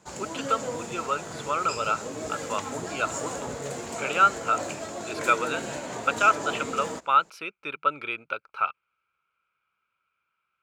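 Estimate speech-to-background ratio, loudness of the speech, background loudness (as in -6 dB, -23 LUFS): 7.0 dB, -27.5 LUFS, -34.5 LUFS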